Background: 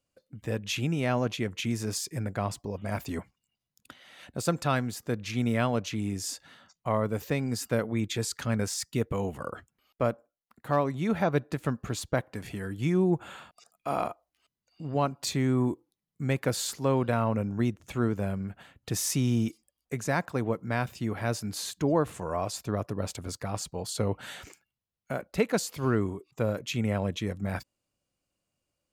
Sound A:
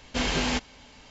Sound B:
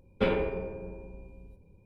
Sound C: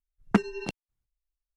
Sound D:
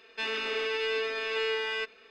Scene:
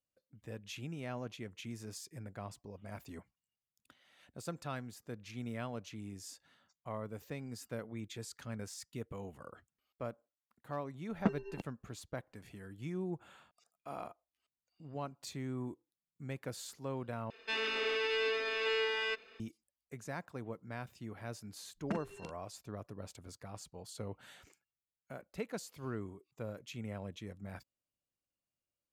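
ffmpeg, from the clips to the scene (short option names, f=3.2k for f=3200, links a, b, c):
-filter_complex "[3:a]asplit=2[a][b];[0:a]volume=-14.5dB[c];[a]lowpass=f=1.4k:p=1[d];[b]asplit=2[e][f];[f]adelay=42,volume=-6dB[g];[e][g]amix=inputs=2:normalize=0[h];[c]asplit=2[i][j];[i]atrim=end=17.304[k];[4:a]atrim=end=2.1,asetpts=PTS-STARTPTS,volume=-3dB[l];[j]atrim=start=19.396[m];[d]atrim=end=1.56,asetpts=PTS-STARTPTS,volume=-9dB,afade=t=in:d=0.004:c=hsin,afade=t=out:st=1.556:d=0.004:c=hsin,adelay=10910[n];[h]atrim=end=1.56,asetpts=PTS-STARTPTS,volume=-16.5dB,afade=t=in:d=0.004:c=hsin,afade=t=out:st=1.556:d=0.004:c=hsin,adelay=21560[o];[k][l]acrossfade=d=0.004:c1=hsin:c2=hsin[p];[p][m]acrossfade=d=0.004:c1=hsin:c2=hsin[q];[q][n][o]amix=inputs=3:normalize=0"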